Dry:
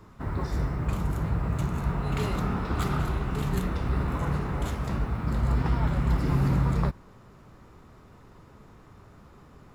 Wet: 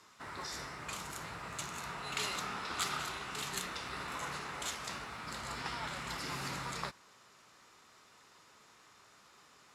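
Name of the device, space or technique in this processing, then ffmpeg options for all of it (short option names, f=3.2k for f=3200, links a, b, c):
piezo pickup straight into a mixer: -af "lowpass=6.7k,aderivative,volume=11dB"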